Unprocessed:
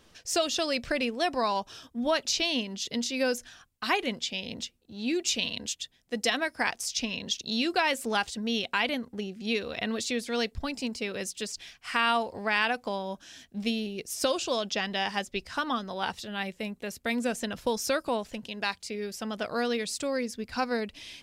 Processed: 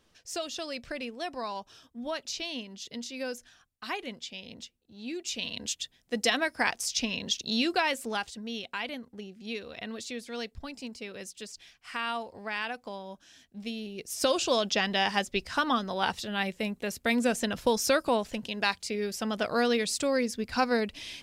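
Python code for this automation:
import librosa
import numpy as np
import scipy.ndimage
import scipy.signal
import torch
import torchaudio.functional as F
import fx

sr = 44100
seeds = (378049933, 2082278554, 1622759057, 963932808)

y = fx.gain(x, sr, db=fx.line((5.24, -8.0), (5.73, 1.0), (7.6, 1.0), (8.48, -7.5), (13.69, -7.5), (14.41, 3.0)))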